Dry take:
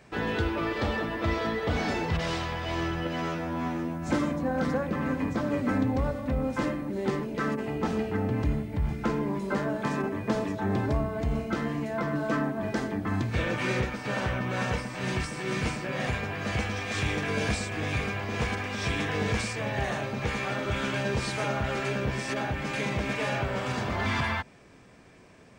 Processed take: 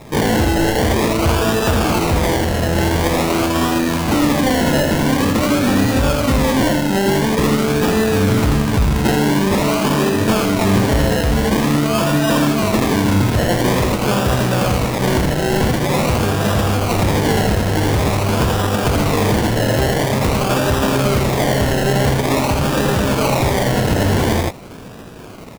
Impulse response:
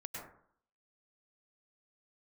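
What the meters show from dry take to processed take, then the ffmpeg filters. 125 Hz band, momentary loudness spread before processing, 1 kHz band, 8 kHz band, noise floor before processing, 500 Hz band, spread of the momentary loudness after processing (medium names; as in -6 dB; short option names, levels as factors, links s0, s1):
+14.0 dB, 3 LU, +13.5 dB, +18.5 dB, -47 dBFS, +14.0 dB, 2 LU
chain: -filter_complex "[0:a]lowpass=f=8200:w=0.5412,lowpass=f=8200:w=1.3066,highshelf=f=5000:g=-11.5,bandreject=f=1300:w=18,acrusher=samples=29:mix=1:aa=0.000001:lfo=1:lforange=17.4:lforate=0.47,asoftclip=type=hard:threshold=0.0501,acrusher=bits=2:mode=log:mix=0:aa=0.000001,asplit=2[s0][s1];[s1]aecho=0:1:82:0.562[s2];[s0][s2]amix=inputs=2:normalize=0,alimiter=level_in=18.8:limit=0.891:release=50:level=0:latency=1,volume=0.398"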